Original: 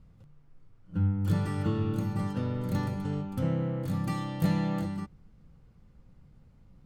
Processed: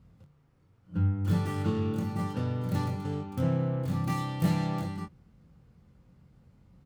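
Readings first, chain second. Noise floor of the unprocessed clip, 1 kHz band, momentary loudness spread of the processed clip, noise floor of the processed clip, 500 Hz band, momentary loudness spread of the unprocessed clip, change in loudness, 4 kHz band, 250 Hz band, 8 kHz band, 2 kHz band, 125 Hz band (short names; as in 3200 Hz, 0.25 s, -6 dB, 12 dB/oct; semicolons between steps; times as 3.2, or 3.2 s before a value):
-58 dBFS, +2.0 dB, 7 LU, -64 dBFS, +1.0 dB, 5 LU, 0.0 dB, +1.5 dB, -0.5 dB, +2.0 dB, +0.5 dB, +0.5 dB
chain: tracing distortion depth 0.36 ms; HPF 58 Hz; doubler 23 ms -7 dB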